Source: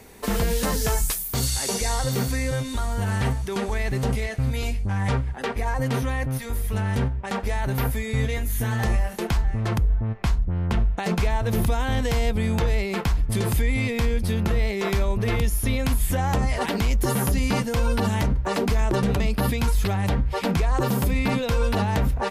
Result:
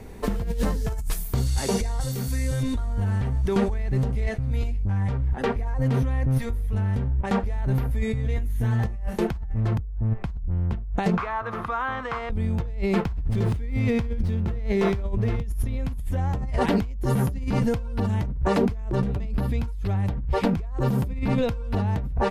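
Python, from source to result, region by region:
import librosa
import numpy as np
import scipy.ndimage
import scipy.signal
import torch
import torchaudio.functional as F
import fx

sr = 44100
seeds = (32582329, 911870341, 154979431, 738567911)

y = fx.chain(x, sr, fx.pre_emphasis(coefficient=0.8),
    fx.doubler(ms=30.0, db=-12.5),
    fx.env_flatten(amount_pct=100), at=(2.0, 2.63))
y = fx.chain(y, sr, fx.bandpass_q(hz=1400.0, q=1.2),
    fx.peak_eq(hz=1200.0, db=14.0, octaves=0.4), at=(11.17, 12.3))
y = fx.chain(y, sr, fx.highpass(hz=42.0, slope=12),
    fx.echo_feedback(ms=68, feedback_pct=56, wet_db=-22.0),
    fx.running_max(window=3), at=(13.05, 15.43))
y = fx.tilt_eq(y, sr, slope=-2.5)
y = fx.over_compress(y, sr, threshold_db=-20.0, ratio=-1.0)
y = y * 10.0 ** (-4.5 / 20.0)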